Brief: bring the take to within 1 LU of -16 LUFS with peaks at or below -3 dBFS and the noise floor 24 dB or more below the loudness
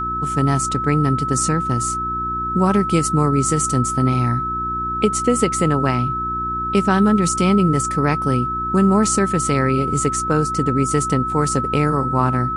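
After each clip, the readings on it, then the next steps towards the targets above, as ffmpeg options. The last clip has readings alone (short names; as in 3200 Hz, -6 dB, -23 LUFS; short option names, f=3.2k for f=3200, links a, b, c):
hum 60 Hz; harmonics up to 360 Hz; hum level -28 dBFS; steady tone 1300 Hz; tone level -21 dBFS; loudness -18.5 LUFS; peak -3.5 dBFS; loudness target -16.0 LUFS
-> -af "bandreject=f=60:t=h:w=4,bandreject=f=120:t=h:w=4,bandreject=f=180:t=h:w=4,bandreject=f=240:t=h:w=4,bandreject=f=300:t=h:w=4,bandreject=f=360:t=h:w=4"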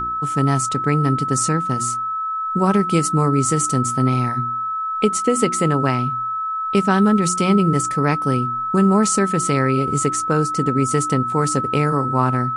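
hum none; steady tone 1300 Hz; tone level -21 dBFS
-> -af "bandreject=f=1.3k:w=30"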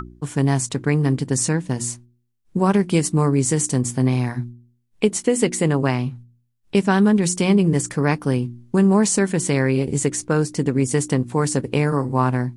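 steady tone none; loudness -20.0 LUFS; peak -4.5 dBFS; loudness target -16.0 LUFS
-> -af "volume=4dB,alimiter=limit=-3dB:level=0:latency=1"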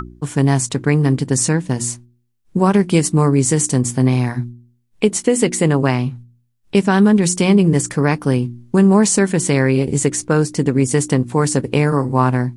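loudness -16.5 LUFS; peak -3.0 dBFS; noise floor -61 dBFS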